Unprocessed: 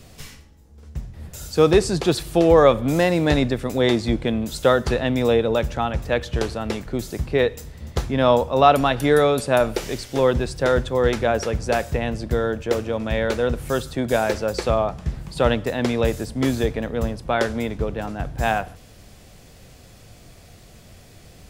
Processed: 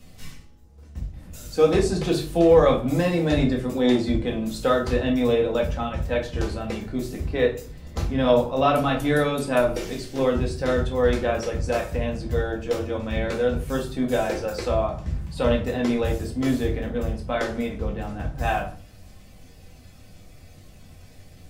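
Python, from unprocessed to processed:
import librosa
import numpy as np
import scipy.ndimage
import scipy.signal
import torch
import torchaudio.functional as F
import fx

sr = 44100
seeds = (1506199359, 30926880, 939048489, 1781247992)

y = fx.spec_quant(x, sr, step_db=15)
y = fx.room_shoebox(y, sr, seeds[0], volume_m3=240.0, walls='furnished', distance_m=2.0)
y = y * 10.0 ** (-7.0 / 20.0)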